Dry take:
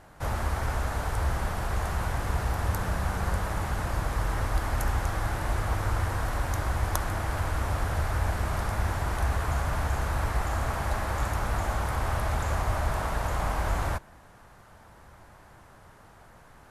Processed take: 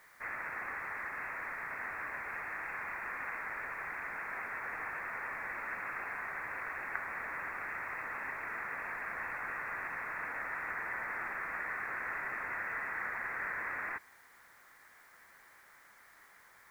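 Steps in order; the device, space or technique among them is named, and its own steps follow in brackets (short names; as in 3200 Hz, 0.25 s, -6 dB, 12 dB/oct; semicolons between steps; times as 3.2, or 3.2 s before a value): scrambled radio voice (BPF 390–3200 Hz; inverted band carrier 2600 Hz; white noise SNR 27 dB); gain -5 dB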